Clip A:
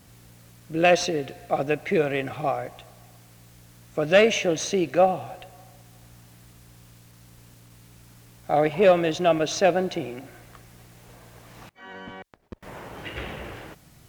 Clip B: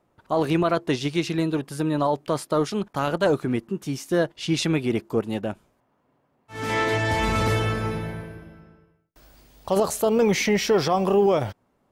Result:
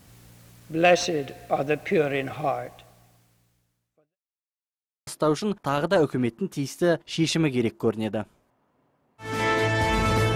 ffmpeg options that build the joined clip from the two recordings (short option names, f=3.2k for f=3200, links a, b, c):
-filter_complex "[0:a]apad=whole_dur=10.35,atrim=end=10.35,asplit=2[a][b];[a]atrim=end=4.17,asetpts=PTS-STARTPTS,afade=t=out:st=2.46:d=1.71:c=qua[c];[b]atrim=start=4.17:end=5.07,asetpts=PTS-STARTPTS,volume=0[d];[1:a]atrim=start=2.37:end=7.65,asetpts=PTS-STARTPTS,afade=t=in:d=0.004:c=hsin[e];[c][d][e]concat=n=3:v=0:a=1"